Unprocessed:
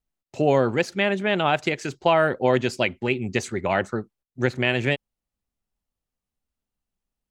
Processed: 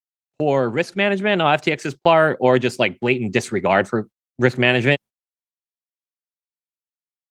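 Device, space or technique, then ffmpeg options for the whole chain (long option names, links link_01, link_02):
video call: -af "highpass=frequency=110:width=0.5412,highpass=frequency=110:width=1.3066,dynaudnorm=framelen=370:gausssize=5:maxgain=10.5dB,agate=range=-34dB:threshold=-32dB:ratio=16:detection=peak" -ar 48000 -c:a libopus -b:a 32k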